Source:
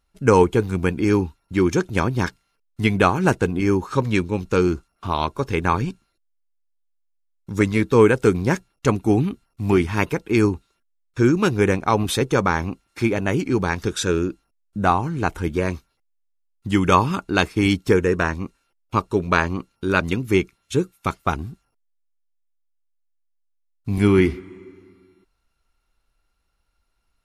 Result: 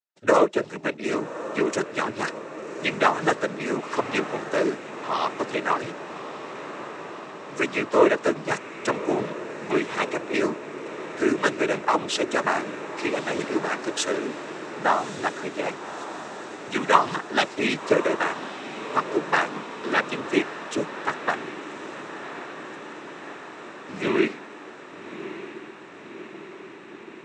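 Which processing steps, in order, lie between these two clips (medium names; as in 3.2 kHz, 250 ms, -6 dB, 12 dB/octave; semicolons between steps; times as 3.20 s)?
gate with hold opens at -46 dBFS; high-pass 400 Hz 12 dB/octave; noise-vocoded speech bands 12; on a send: echo that smears into a reverb 1156 ms, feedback 72%, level -12 dB; on the sum: trim -1 dB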